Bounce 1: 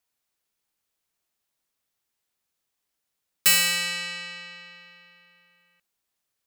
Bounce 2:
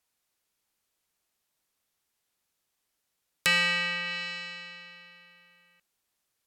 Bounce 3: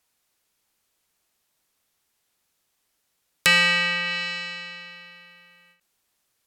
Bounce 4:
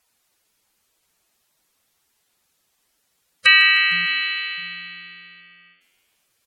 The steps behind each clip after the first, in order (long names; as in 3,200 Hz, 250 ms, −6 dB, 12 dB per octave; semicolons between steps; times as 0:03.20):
treble cut that deepens with the level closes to 2,600 Hz, closed at −27 dBFS; level +2 dB
every ending faded ahead of time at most 150 dB per second; level +6.5 dB
gate on every frequency bin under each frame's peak −10 dB strong; echo with shifted repeats 153 ms, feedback 62%, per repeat +91 Hz, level −17 dB; level +6 dB